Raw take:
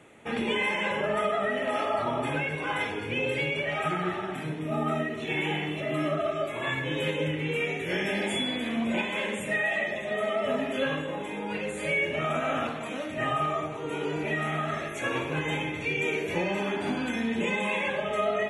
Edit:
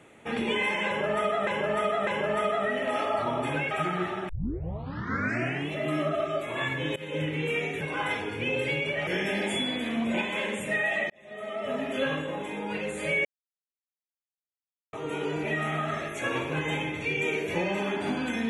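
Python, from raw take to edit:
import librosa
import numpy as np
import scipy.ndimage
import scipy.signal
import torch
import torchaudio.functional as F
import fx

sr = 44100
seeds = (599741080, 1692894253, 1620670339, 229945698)

y = fx.edit(x, sr, fx.repeat(start_s=0.87, length_s=0.6, count=3),
    fx.move(start_s=2.51, length_s=1.26, to_s=7.87),
    fx.tape_start(start_s=4.35, length_s=1.42),
    fx.fade_in_from(start_s=7.02, length_s=0.28, floor_db=-22.0),
    fx.fade_in_span(start_s=9.9, length_s=0.9),
    fx.silence(start_s=12.05, length_s=1.68), tone=tone)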